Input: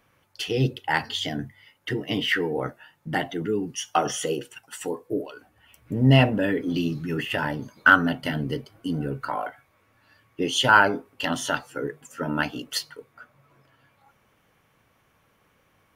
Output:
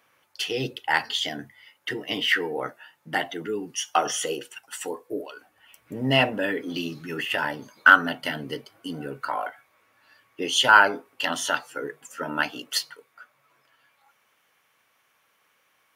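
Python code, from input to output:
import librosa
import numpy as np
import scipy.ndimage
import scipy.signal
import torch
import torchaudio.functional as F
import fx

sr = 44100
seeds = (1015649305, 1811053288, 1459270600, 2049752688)

y = fx.highpass(x, sr, hz=fx.steps((0.0, 660.0), (12.96, 1500.0)), slope=6)
y = y * 10.0 ** (2.5 / 20.0)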